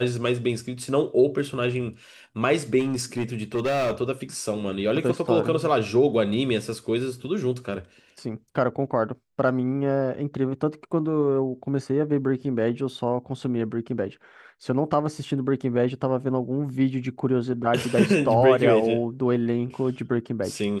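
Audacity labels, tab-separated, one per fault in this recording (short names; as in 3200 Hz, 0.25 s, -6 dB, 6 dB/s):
2.790000	3.930000	clipped -20.5 dBFS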